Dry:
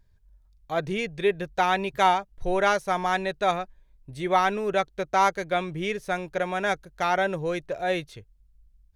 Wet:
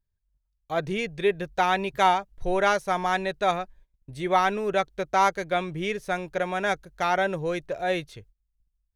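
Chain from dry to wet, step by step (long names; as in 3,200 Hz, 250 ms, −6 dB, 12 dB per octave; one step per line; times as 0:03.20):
noise gate −51 dBFS, range −18 dB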